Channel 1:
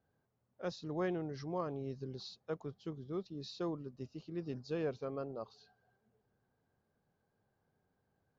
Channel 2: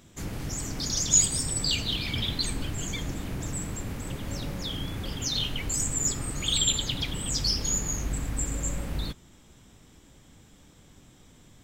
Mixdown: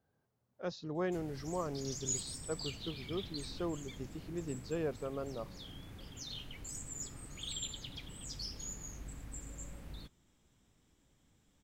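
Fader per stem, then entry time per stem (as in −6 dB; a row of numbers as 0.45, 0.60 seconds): +0.5, −16.5 decibels; 0.00, 0.95 seconds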